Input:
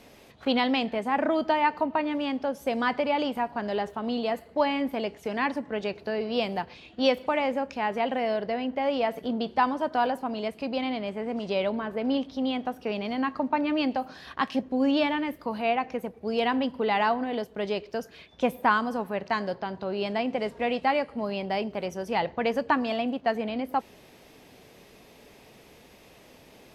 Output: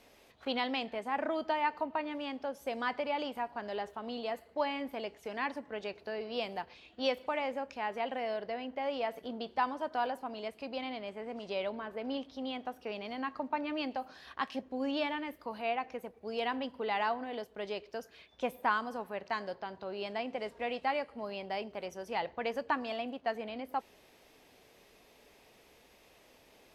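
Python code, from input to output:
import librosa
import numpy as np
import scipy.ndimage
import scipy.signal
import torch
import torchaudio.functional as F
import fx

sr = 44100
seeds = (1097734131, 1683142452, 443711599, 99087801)

y = fx.peak_eq(x, sr, hz=150.0, db=-8.0, octaves=2.0)
y = F.gain(torch.from_numpy(y), -7.0).numpy()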